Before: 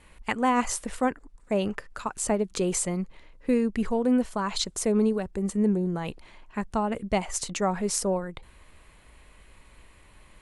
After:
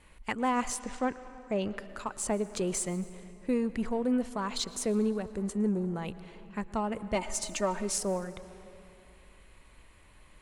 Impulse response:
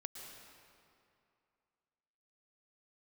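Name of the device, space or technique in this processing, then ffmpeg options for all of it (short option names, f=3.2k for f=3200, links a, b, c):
saturated reverb return: -filter_complex "[0:a]asplit=2[a][b];[1:a]atrim=start_sample=2205[c];[b][c]afir=irnorm=-1:irlink=0,asoftclip=type=tanh:threshold=-31.5dB,volume=-3dB[d];[a][d]amix=inputs=2:normalize=0,asettb=1/sr,asplit=3[e][f][g];[e]atrim=end=0.794[h];[f]atrim=start=0.79:end=1.77,asetpts=PTS-STARTPTS,afade=t=in:d=0.004:c=qsin,afade=t=out:st=0.976:d=0.004:c=qsin,lowpass=f=7.5k:w=0.5412,lowpass=f=7.5k:w=1.3066[i];[g]atrim=start=1.766[j];[h][i]acrossfade=d=0.004:c1=hsin:c2=qsin[k];[k][j]acrossfade=d=0.004:c1=qsin:c2=hsin,asettb=1/sr,asplit=3[l][m][n];[l]atrim=end=7.154[o];[m]atrim=start=7.15:end=7.98,asetpts=PTS-STARTPTS,afade=t=in:d=0.004:c=qsin,afade=t=out:st=0.826:d=0.004:c=qsin,aecho=1:1:3.3:0.72,atrim=end_sample=36603[p];[n]atrim=start=7.976[q];[o][p]acrossfade=d=0.004:c1=hsin:c2=qsin[r];[r][q]acrossfade=d=0.004:c1=qsin:c2=hsin,volume=-6.5dB"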